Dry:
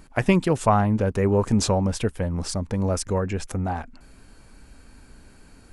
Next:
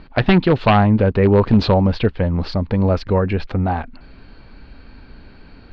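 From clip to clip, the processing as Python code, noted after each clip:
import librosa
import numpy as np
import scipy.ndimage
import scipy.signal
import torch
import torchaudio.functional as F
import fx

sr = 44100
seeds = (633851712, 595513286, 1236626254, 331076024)

y = 10.0 ** (-12.5 / 20.0) * (np.abs((x / 10.0 ** (-12.5 / 20.0) + 3.0) % 4.0 - 2.0) - 1.0)
y = scipy.signal.sosfilt(scipy.signal.cheby1(5, 1.0, 4400.0, 'lowpass', fs=sr, output='sos'), y)
y = y * 10.0 ** (7.5 / 20.0)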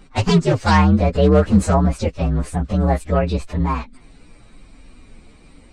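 y = fx.partial_stretch(x, sr, pct=123)
y = y * 10.0 ** (1.0 / 20.0)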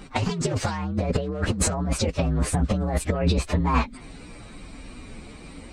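y = fx.highpass(x, sr, hz=48.0, slope=6)
y = fx.over_compress(y, sr, threshold_db=-24.0, ratio=-1.0)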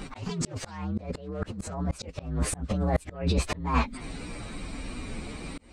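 y = fx.auto_swell(x, sr, attack_ms=524.0)
y = y * 10.0 ** (4.0 / 20.0)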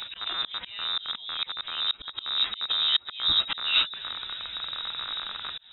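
y = fx.rattle_buzz(x, sr, strikes_db=-36.0, level_db=-24.0)
y = fx.freq_invert(y, sr, carrier_hz=3800)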